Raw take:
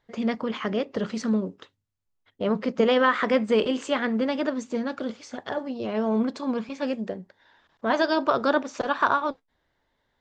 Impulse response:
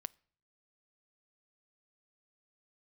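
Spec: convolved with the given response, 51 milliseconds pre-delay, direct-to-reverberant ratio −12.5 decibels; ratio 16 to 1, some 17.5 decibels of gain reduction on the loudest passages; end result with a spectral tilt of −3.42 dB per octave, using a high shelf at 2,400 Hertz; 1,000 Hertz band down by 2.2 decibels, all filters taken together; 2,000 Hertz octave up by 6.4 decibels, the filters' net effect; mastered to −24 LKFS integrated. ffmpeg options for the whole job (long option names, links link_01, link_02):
-filter_complex "[0:a]equalizer=frequency=1000:width_type=o:gain=-7,equalizer=frequency=2000:width_type=o:gain=7.5,highshelf=frequency=2400:gain=8,acompressor=threshold=-33dB:ratio=16,asplit=2[link_01][link_02];[1:a]atrim=start_sample=2205,adelay=51[link_03];[link_02][link_03]afir=irnorm=-1:irlink=0,volume=16.5dB[link_04];[link_01][link_04]amix=inputs=2:normalize=0,volume=1dB"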